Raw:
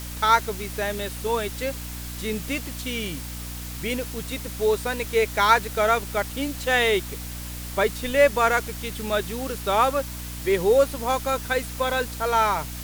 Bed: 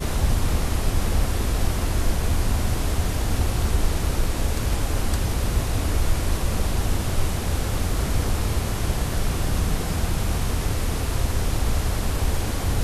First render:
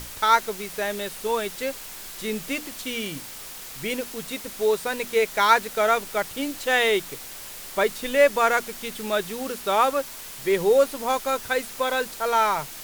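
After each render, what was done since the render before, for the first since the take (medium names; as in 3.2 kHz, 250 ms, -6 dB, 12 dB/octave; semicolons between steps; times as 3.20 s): hum notches 60/120/180/240/300 Hz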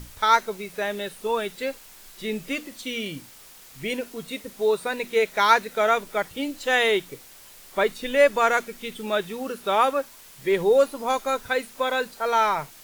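noise print and reduce 9 dB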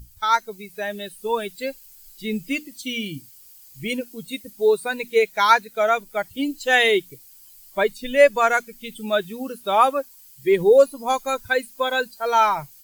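expander on every frequency bin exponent 1.5; level rider gain up to 6.5 dB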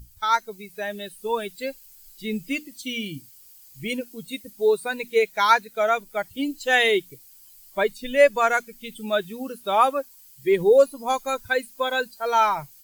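trim -2 dB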